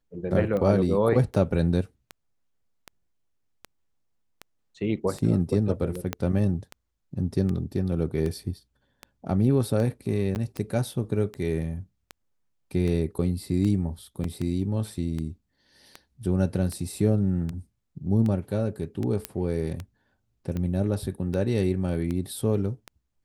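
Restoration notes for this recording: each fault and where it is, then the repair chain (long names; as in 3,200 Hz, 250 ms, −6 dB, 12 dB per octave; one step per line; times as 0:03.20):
scratch tick 78 rpm −20 dBFS
0:06.13: click −13 dBFS
0:10.35–0:10.36: drop-out 9.9 ms
0:14.24: drop-out 3 ms
0:19.25: click −11 dBFS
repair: click removal
repair the gap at 0:10.35, 9.9 ms
repair the gap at 0:14.24, 3 ms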